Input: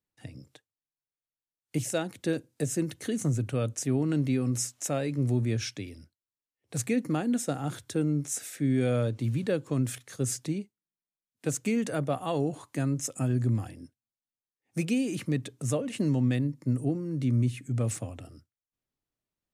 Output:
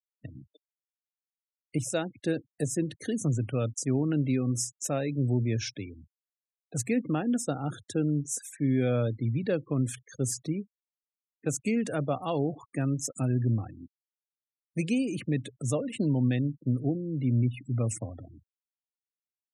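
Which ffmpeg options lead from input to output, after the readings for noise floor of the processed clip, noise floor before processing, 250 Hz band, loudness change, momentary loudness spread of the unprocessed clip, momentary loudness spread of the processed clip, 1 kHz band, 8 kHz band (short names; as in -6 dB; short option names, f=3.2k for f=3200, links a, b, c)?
under -85 dBFS, under -85 dBFS, 0.0 dB, 0.0 dB, 9 LU, 9 LU, 0.0 dB, -0.5 dB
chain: -af "afftfilt=real='re*gte(hypot(re,im),0.01)':imag='im*gte(hypot(re,im),0.01)':win_size=1024:overlap=0.75"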